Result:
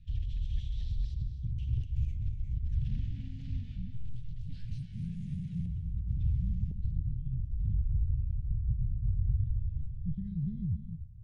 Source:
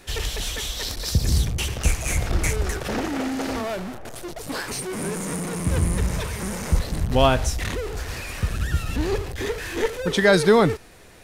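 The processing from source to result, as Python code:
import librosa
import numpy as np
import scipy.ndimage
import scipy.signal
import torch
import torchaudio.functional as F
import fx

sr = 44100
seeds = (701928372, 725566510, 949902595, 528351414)

y = scipy.signal.sosfilt(scipy.signal.ellip(3, 1.0, 50, [130.0, 3200.0], 'bandstop', fs=sr, output='sos'), x)
y = fx.over_compress(y, sr, threshold_db=-31.0, ratio=-1.0)
y = fx.echo_banded(y, sr, ms=130, feedback_pct=49, hz=2000.0, wet_db=-13.0)
y = fx.rev_gated(y, sr, seeds[0], gate_ms=310, shape='rising', drr_db=9.5)
y = fx.filter_sweep_lowpass(y, sr, from_hz=710.0, to_hz=170.0, start_s=5.67, end_s=8.22, q=1.0)
y = fx.doppler_dist(y, sr, depth_ms=0.11)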